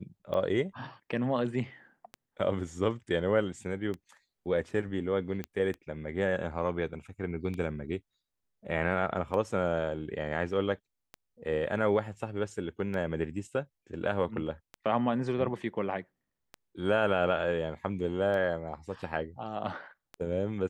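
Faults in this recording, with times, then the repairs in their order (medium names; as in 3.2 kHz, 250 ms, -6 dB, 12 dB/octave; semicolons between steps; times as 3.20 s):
tick 33 1/3 rpm -25 dBFS
5.44 s: pop -22 dBFS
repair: de-click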